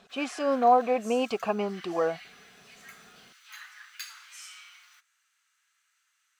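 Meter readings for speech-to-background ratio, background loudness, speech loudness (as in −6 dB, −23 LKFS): 20.0 dB, −46.5 LKFS, −26.5 LKFS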